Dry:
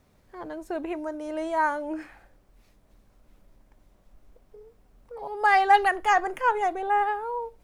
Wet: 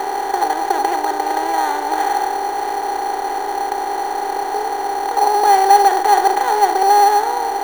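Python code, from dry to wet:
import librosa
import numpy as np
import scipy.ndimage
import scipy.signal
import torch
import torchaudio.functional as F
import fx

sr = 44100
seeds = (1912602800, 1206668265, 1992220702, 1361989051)

p1 = fx.bin_compress(x, sr, power=0.2)
p2 = fx.small_body(p1, sr, hz=(400.0, 800.0), ring_ms=40, db=13)
p3 = fx.sample_hold(p2, sr, seeds[0], rate_hz=5100.0, jitter_pct=0)
p4 = p2 + (p3 * 10.0 ** (-3.0 / 20.0))
y = p4 * 10.0 ** (-11.5 / 20.0)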